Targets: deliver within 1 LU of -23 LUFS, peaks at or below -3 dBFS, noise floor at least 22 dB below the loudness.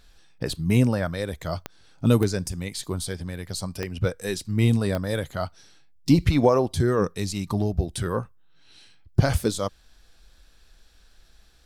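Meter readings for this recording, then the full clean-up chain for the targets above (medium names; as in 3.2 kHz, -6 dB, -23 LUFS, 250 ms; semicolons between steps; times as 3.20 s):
clicks found 4; loudness -25.5 LUFS; peak level -6.5 dBFS; loudness target -23.0 LUFS
-> de-click; trim +2.5 dB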